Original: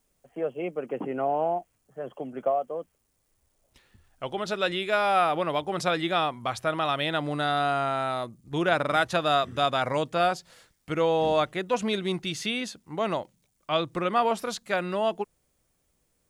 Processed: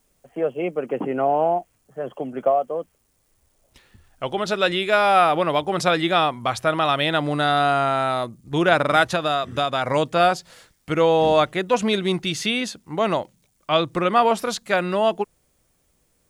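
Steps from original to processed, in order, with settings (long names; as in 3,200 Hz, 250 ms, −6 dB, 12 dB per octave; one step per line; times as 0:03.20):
0:09.06–0:09.89: downward compressor, threshold −25 dBFS, peak gain reduction 6.5 dB
level +6.5 dB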